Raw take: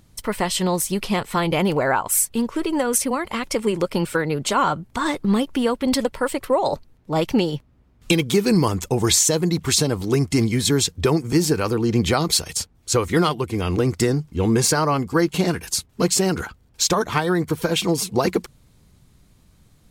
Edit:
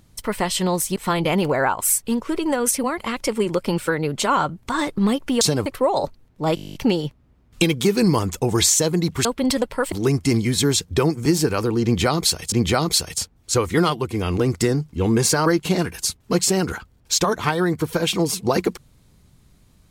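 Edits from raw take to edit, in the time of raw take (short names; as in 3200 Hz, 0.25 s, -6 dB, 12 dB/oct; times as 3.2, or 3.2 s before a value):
0.96–1.23 cut
5.68–6.35 swap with 9.74–9.99
7.24 stutter 0.02 s, 11 plays
11.91–12.59 loop, 2 plays
14.85–15.15 cut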